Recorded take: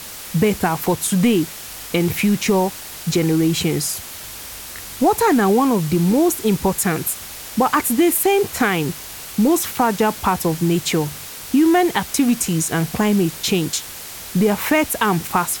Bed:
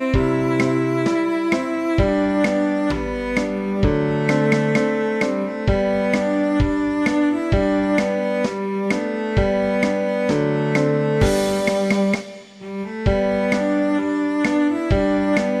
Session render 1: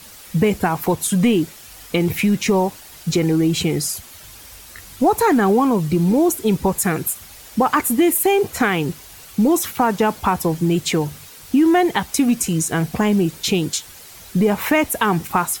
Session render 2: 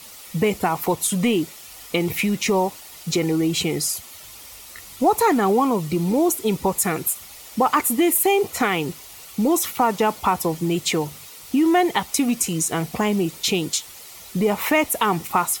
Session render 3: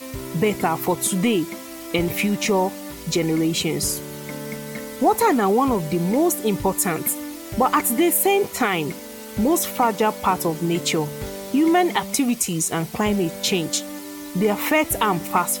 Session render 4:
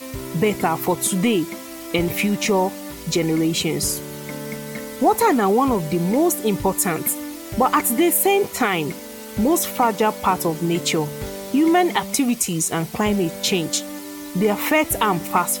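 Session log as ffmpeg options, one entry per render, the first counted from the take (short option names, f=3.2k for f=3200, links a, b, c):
-af "afftdn=nr=9:nf=-34"
-af "lowshelf=f=250:g=-9,bandreject=f=1.6k:w=6"
-filter_complex "[1:a]volume=-15dB[a];[0:a][a]amix=inputs=2:normalize=0"
-af "volume=1dB"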